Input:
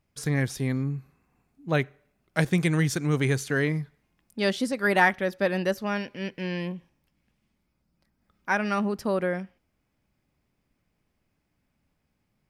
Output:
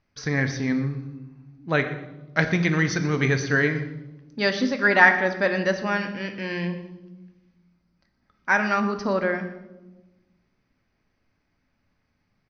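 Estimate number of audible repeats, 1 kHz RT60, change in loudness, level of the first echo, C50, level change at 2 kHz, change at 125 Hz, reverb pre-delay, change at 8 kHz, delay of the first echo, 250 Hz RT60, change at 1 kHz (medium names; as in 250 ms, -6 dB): 1, 0.95 s, +4.0 dB, -16.5 dB, 10.0 dB, +7.0 dB, +0.5 dB, 3 ms, 0.0 dB, 120 ms, 1.7 s, +4.0 dB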